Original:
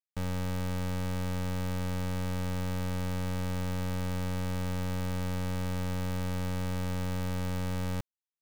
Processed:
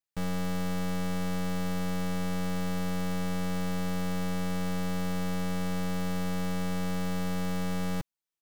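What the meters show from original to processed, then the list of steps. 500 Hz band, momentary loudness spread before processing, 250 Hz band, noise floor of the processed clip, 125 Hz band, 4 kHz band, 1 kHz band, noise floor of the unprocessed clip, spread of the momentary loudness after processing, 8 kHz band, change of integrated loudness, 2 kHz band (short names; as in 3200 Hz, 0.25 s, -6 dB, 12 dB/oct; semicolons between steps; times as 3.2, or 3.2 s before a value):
+2.0 dB, 0 LU, +4.5 dB, under -85 dBFS, -1.5 dB, +2.5 dB, +3.0 dB, under -85 dBFS, 0 LU, +2.5 dB, +1.5 dB, +2.5 dB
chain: comb 6.1 ms, depth 90%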